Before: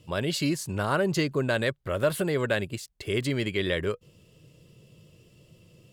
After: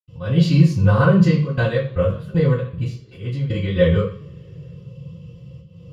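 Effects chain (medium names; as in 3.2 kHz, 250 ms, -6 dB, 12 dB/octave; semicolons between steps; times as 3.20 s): slow attack 209 ms; 1.11–3.68 s: tremolo saw down 2.6 Hz, depth 100%; reverberation, pre-delay 76 ms, DRR -60 dB; trim -2 dB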